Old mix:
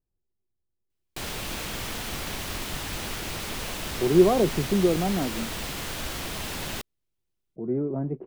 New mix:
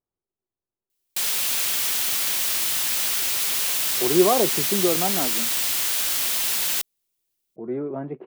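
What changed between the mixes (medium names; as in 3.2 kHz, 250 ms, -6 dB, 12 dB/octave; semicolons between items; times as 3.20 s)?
speech +6.0 dB; master: add tilt EQ +4.5 dB/octave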